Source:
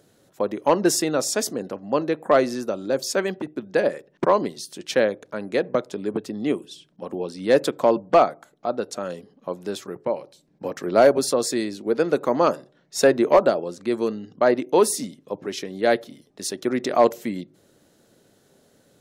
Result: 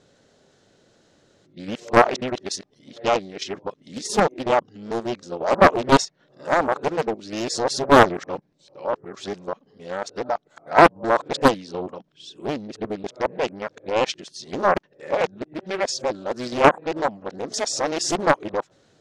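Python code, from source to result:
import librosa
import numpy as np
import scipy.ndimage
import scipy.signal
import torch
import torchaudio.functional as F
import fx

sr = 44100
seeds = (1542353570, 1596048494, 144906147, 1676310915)

p1 = np.flip(x).copy()
p2 = scipy.signal.sosfilt(scipy.signal.butter(4, 6900.0, 'lowpass', fs=sr, output='sos'), p1)
p3 = fx.peak_eq(p2, sr, hz=240.0, db=-4.5, octaves=2.1)
p4 = fx.level_steps(p3, sr, step_db=16)
p5 = p3 + F.gain(torch.from_numpy(p4), 0.5).numpy()
p6 = fx.dynamic_eq(p5, sr, hz=860.0, q=1.4, threshold_db=-26.0, ratio=4.0, max_db=4)
p7 = fx.doppler_dist(p6, sr, depth_ms=0.92)
y = F.gain(torch.from_numpy(p7), -2.5).numpy()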